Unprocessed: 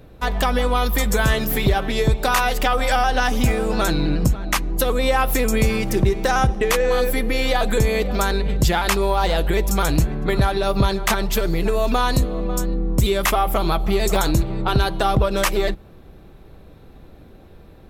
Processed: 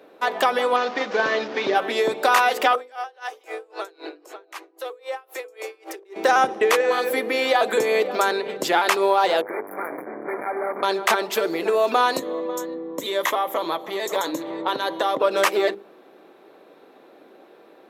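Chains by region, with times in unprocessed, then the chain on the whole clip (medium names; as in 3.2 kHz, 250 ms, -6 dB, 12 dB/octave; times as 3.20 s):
0.76–1.75 s: CVSD coder 32 kbps + de-hum 46.3 Hz, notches 29
2.75–6.16 s: steep high-pass 330 Hz 72 dB/octave + compression 3:1, threshold -29 dBFS + logarithmic tremolo 3.8 Hz, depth 29 dB
9.41–10.83 s: peaking EQ 8.6 kHz -6 dB 1.6 oct + overload inside the chain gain 25 dB + brick-wall FIR band-stop 2.4–9.6 kHz
12.19–15.20 s: rippled EQ curve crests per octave 1.1, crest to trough 8 dB + compression 2:1, threshold -21 dBFS
whole clip: high-pass 320 Hz 24 dB/octave; treble shelf 4 kHz -9 dB; hum notches 50/100/150/200/250/300/350/400/450/500 Hz; trim +3 dB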